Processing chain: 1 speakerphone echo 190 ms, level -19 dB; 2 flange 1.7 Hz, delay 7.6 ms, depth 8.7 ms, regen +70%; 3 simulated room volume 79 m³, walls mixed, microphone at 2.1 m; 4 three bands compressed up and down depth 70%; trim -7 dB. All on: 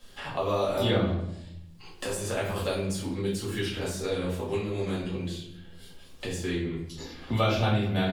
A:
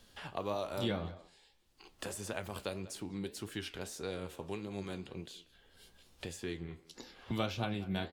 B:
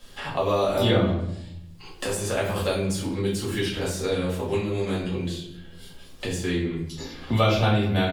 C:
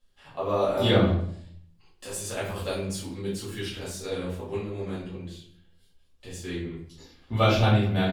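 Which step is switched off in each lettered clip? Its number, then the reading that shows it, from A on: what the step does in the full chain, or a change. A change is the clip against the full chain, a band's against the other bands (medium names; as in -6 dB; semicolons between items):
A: 3, crest factor change +4.5 dB; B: 2, loudness change +4.0 LU; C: 4, crest factor change +2.0 dB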